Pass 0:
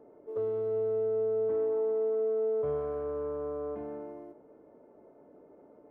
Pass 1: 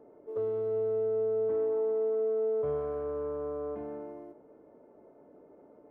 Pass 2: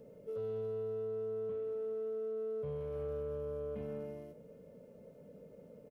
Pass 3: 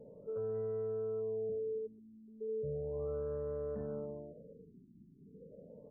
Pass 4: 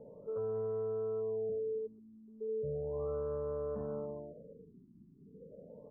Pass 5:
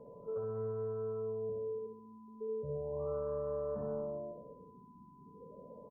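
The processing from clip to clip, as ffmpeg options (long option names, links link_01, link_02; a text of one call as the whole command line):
ffmpeg -i in.wav -af anull out.wav
ffmpeg -i in.wav -af "alimiter=level_in=9dB:limit=-24dB:level=0:latency=1:release=62,volume=-9dB,firequalizer=gain_entry='entry(100,0);entry(180,6);entry(330,-21);entry(500,0);entry(740,-20);entry(2800,4)':delay=0.05:min_phase=1,asoftclip=type=tanh:threshold=-39dB,volume=7.5dB" out.wav
ffmpeg -i in.wav -af "areverse,acompressor=mode=upward:threshold=-59dB:ratio=2.5,areverse,afftfilt=real='re*lt(b*sr/1024,370*pow(2100/370,0.5+0.5*sin(2*PI*0.35*pts/sr)))':imag='im*lt(b*sr/1024,370*pow(2100/370,0.5+0.5*sin(2*PI*0.35*pts/sr)))':win_size=1024:overlap=0.75,volume=1dB" out.wav
ffmpeg -i in.wav -af "lowpass=frequency=1100:width_type=q:width=2.6" out.wav
ffmpeg -i in.wav -af "aeval=exprs='val(0)+0.000631*sin(2*PI*1000*n/s)':channel_layout=same,aecho=1:1:63|126|189|252|315:0.501|0.221|0.097|0.0427|0.0188,volume=-1dB" out.wav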